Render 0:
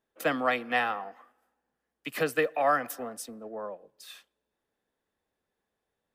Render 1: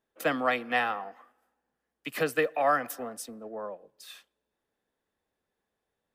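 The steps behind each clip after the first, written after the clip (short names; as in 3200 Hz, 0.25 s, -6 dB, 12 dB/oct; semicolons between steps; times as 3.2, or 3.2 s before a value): nothing audible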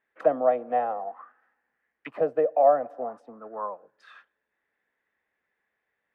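tilt +2 dB/oct; envelope low-pass 630–2000 Hz down, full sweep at -30 dBFS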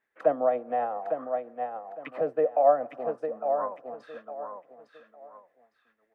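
on a send: feedback echo 0.857 s, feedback 27%, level -6.5 dB; on the sum: tremolo triangle 7.5 Hz, depth 40%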